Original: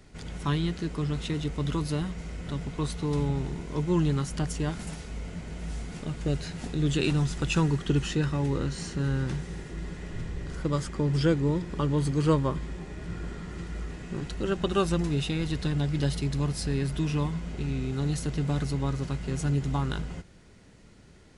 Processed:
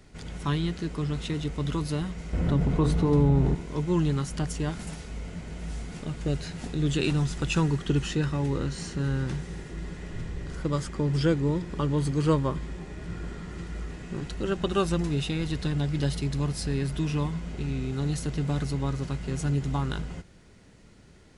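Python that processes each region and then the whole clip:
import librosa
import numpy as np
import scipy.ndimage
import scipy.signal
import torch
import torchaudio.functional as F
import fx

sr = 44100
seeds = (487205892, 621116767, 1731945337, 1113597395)

y = fx.chain(x, sr, fx.tilt_shelf(db=7.0, hz=1500.0),
    fx.hum_notches(base_hz=50, count=9),
    fx.env_flatten(amount_pct=50), at=(2.33, 3.55))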